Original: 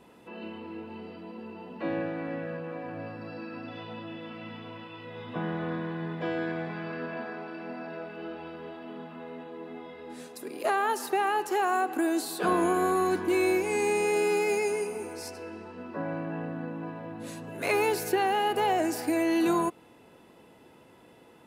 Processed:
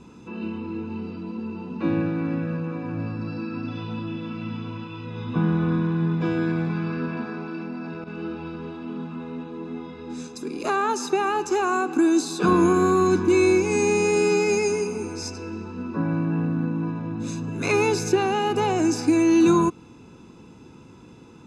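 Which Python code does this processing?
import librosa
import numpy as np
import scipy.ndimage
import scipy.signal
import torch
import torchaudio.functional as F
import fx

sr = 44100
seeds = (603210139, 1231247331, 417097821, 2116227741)

y = fx.lowpass_res(x, sr, hz=6400.0, q=3.5)
y = y + 0.65 * np.pad(y, (int(0.8 * sr / 1000.0), 0))[:len(y)]
y = fx.level_steps(y, sr, step_db=10, at=(7.62, 8.06), fade=0.02)
y = fx.low_shelf(y, sr, hz=460.0, db=11.5)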